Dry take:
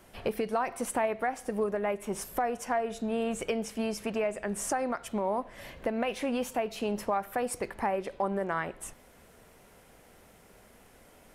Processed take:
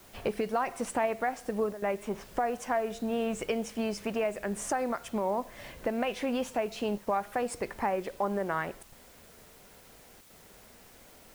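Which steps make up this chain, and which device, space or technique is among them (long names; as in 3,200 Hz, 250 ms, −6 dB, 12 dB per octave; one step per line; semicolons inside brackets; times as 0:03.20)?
0:01.98–0:02.46: treble cut that deepens with the level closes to 2,600 Hz, closed at −30.5 dBFS
worn cassette (low-pass filter 8,300 Hz; tape wow and flutter; tape dropouts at 0:01.73/0:06.98/0:08.83/0:10.21, 90 ms −11 dB; white noise bed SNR 25 dB)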